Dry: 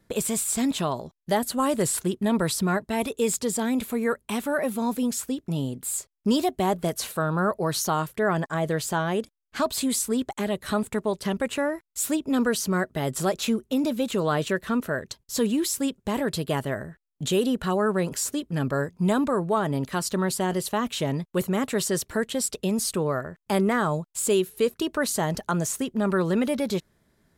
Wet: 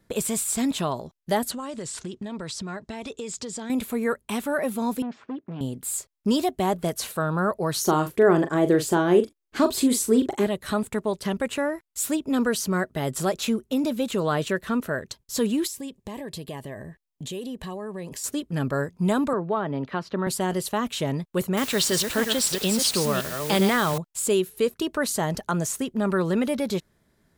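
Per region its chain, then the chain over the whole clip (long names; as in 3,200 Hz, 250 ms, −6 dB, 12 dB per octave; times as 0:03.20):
0:01.51–0:03.70: low-pass filter 7,000 Hz 24 dB per octave + high-shelf EQ 4,200 Hz +7 dB + downward compressor 8 to 1, threshold −30 dBFS
0:05.02–0:05.61: hard clipping −27 dBFS + band-pass filter 200–2,400 Hz + high-frequency loss of the air 160 metres
0:07.81–0:10.47: parametric band 350 Hz +13.5 dB 0.75 octaves + double-tracking delay 40 ms −9.5 dB
0:15.67–0:18.24: Butterworth band-reject 1,400 Hz, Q 3.6 + downward compressor 3 to 1, threshold −34 dBFS
0:19.33–0:20.27: high-pass filter 180 Hz 6 dB per octave + high-frequency loss of the air 290 metres + multiband upward and downward compressor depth 40%
0:21.57–0:23.98: delay that plays each chunk backwards 338 ms, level −6 dB + parametric band 3,700 Hz +11 dB 1.4 octaves + bit-depth reduction 6 bits, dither triangular
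whole clip: no processing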